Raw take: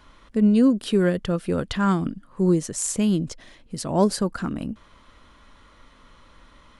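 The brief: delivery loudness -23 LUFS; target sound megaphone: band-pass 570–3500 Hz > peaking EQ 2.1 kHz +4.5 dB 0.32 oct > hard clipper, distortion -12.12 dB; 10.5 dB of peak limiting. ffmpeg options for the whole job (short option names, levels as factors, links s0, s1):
-af "alimiter=limit=0.126:level=0:latency=1,highpass=570,lowpass=3500,equalizer=f=2100:t=o:w=0.32:g=4.5,asoftclip=type=hard:threshold=0.0355,volume=5.62"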